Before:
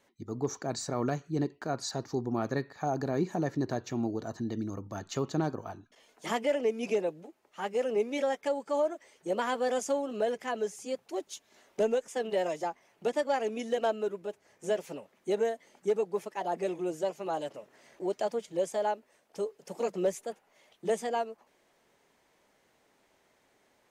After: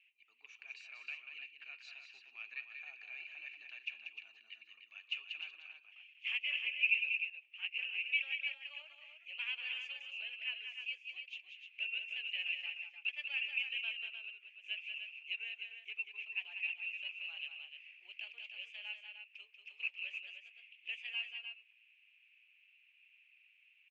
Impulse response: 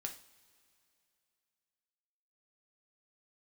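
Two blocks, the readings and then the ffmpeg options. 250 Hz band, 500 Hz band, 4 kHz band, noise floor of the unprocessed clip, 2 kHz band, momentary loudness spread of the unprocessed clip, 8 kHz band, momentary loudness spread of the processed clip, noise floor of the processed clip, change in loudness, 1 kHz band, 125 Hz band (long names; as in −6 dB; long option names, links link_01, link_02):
below −40 dB, below −40 dB, +4.0 dB, −70 dBFS, +5.5 dB, 11 LU, below −25 dB, 17 LU, −69 dBFS, −7.0 dB, below −30 dB, below −40 dB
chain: -af "asuperpass=centerf=2600:order=4:qfactor=6.9,aecho=1:1:188|304:0.447|0.422,volume=16dB"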